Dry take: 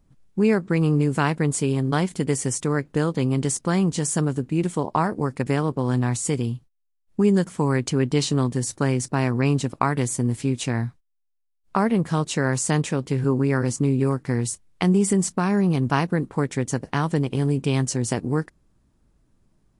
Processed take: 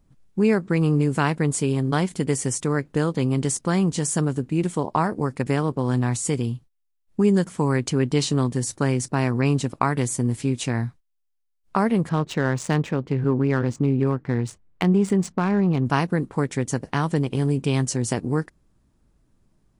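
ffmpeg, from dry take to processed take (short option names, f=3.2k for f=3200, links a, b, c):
-filter_complex "[0:a]asettb=1/sr,asplit=3[a][b][c];[a]atrim=end=12.094[d];[b]atrim=start=12.09:end=15.86,asetpts=PTS-STARTPTS,afade=t=in:d=0.004:c=qsin,afade=t=out:st=3.766:d=0.004:c=qsin,adynamicsmooth=sensitivity=2.5:basefreq=2.2k[e];[c]atrim=start=15.856[f];[d][e]acrossfade=d=0.004:c1=hsin:c2=qsin[g];[g][f]acrossfade=d=0.004:c1=qsin:c2=hsin"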